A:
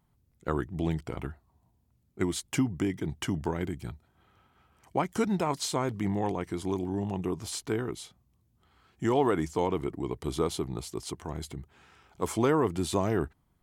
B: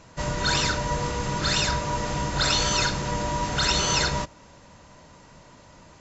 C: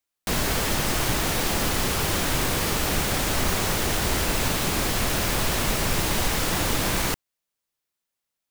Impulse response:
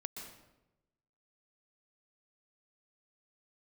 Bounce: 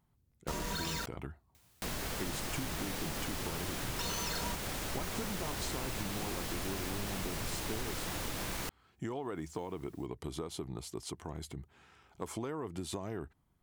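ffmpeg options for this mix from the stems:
-filter_complex "[0:a]acompressor=threshold=-29dB:ratio=6,volume=-3.5dB[a];[1:a]aecho=1:1:4.4:0.65,alimiter=limit=-17.5dB:level=0:latency=1,acrusher=bits=4:mix=0:aa=0.000001,adelay=300,volume=-7dB,asplit=3[b][c][d];[b]atrim=end=1.06,asetpts=PTS-STARTPTS,afade=t=out:st=1.056:d=0.004:c=hsin[e];[c]atrim=start=1.06:end=3.99,asetpts=PTS-STARTPTS,volume=0[f];[d]atrim=start=3.99,asetpts=PTS-STARTPTS,afade=t=in:d=0.004:c=hsin[g];[e][f][g]concat=n=3:v=0:a=1[h];[2:a]acompressor=mode=upward:threshold=-35dB:ratio=2.5,adelay=1550,volume=-10.5dB[i];[a][h][i]amix=inputs=3:normalize=0,acompressor=threshold=-37dB:ratio=2"

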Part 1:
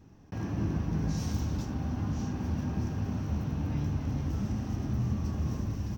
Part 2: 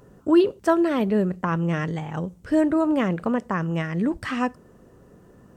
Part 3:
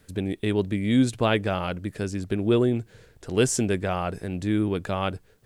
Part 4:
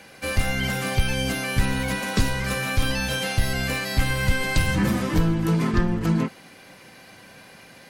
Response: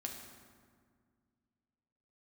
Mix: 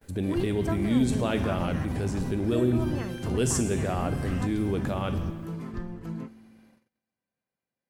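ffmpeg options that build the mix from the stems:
-filter_complex "[0:a]volume=2.5dB[a];[1:a]volume=-14.5dB[b];[2:a]volume=2dB,asplit=3[c][d][e];[d]volume=-11.5dB[f];[3:a]volume=-15dB,asplit=2[g][h];[h]volume=-16dB[i];[e]apad=whole_len=263355[j];[a][j]sidechaingate=range=-33dB:threshold=-45dB:ratio=16:detection=peak[k];[k][c][g]amix=inputs=3:normalize=0,lowpass=f=1k:p=1,alimiter=limit=-23dB:level=0:latency=1:release=25,volume=0dB[l];[4:a]atrim=start_sample=2205[m];[f][i]amix=inputs=2:normalize=0[n];[n][m]afir=irnorm=-1:irlink=0[o];[b][l][o]amix=inputs=3:normalize=0,agate=range=-27dB:threshold=-57dB:ratio=16:detection=peak,highshelf=f=5.6k:g=11.5"

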